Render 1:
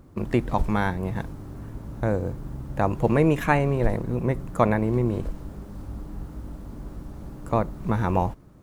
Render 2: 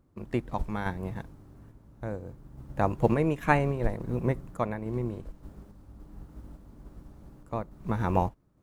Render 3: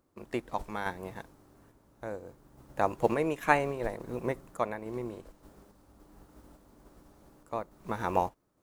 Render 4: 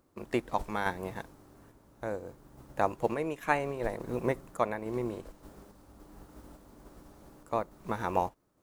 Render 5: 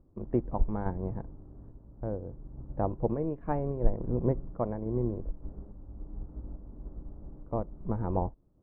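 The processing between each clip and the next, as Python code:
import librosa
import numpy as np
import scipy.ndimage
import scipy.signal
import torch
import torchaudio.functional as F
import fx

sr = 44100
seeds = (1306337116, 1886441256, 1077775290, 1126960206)

y1 = fx.tremolo_random(x, sr, seeds[0], hz=3.5, depth_pct=55)
y1 = fx.upward_expand(y1, sr, threshold_db=-39.0, expansion=1.5)
y2 = fx.bass_treble(y1, sr, bass_db=-13, treble_db=4)
y3 = fx.rider(y2, sr, range_db=4, speed_s=0.5)
y4 = scipy.signal.sosfilt(scipy.signal.butter(2, 1000.0, 'lowpass', fs=sr, output='sos'), y3)
y4 = fx.tilt_eq(y4, sr, slope=-4.5)
y4 = y4 * librosa.db_to_amplitude(-5.0)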